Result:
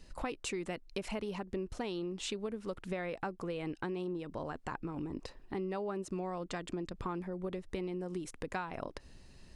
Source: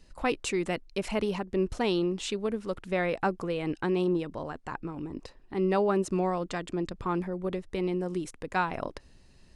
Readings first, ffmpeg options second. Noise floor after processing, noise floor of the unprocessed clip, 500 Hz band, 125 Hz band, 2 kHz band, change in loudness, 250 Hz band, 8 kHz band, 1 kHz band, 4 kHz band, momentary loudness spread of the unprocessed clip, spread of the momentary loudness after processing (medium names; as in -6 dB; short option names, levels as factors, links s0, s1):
-58 dBFS, -57 dBFS, -9.5 dB, -8.0 dB, -9.0 dB, -9.0 dB, -8.5 dB, -5.0 dB, -9.5 dB, -6.5 dB, 11 LU, 4 LU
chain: -af "acompressor=threshold=0.0141:ratio=6,volume=1.19"